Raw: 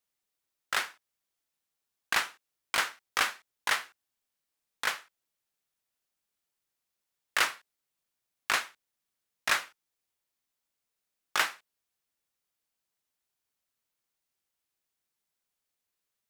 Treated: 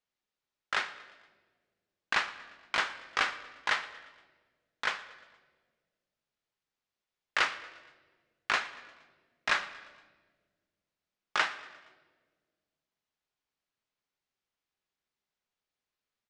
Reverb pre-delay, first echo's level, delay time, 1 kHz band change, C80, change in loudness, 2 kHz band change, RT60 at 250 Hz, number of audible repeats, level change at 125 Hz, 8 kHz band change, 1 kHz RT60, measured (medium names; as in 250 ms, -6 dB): 5 ms, -21.0 dB, 117 ms, 0.0 dB, 15.0 dB, -1.5 dB, -0.5 dB, 2.3 s, 4, no reading, -9.5 dB, 1.2 s